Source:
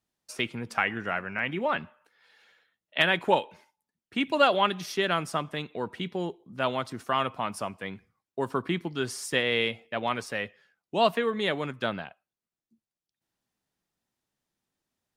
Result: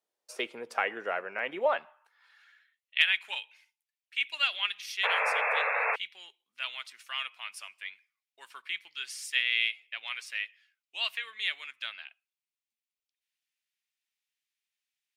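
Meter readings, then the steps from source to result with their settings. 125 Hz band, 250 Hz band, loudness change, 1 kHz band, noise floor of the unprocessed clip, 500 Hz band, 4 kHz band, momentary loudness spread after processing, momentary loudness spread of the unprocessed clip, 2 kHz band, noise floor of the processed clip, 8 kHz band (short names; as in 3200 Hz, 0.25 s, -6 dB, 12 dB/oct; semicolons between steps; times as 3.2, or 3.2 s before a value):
under -30 dB, under -15 dB, -2.0 dB, -6.5 dB, under -85 dBFS, -9.0 dB, +0.5 dB, 16 LU, 12 LU, +0.5 dB, under -85 dBFS, -4.0 dB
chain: high-pass sweep 480 Hz -> 2400 Hz, 1.52–2.91; painted sound noise, 5.03–5.96, 430–2700 Hz -24 dBFS; gain -4.5 dB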